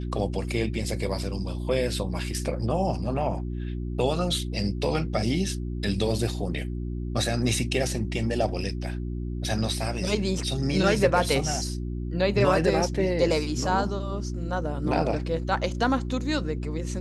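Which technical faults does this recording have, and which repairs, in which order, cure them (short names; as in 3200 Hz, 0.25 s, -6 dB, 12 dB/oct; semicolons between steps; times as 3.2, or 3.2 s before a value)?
hum 60 Hz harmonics 6 -31 dBFS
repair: de-hum 60 Hz, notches 6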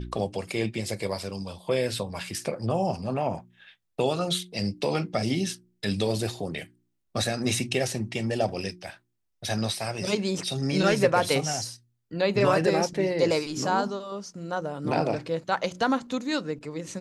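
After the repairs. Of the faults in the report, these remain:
none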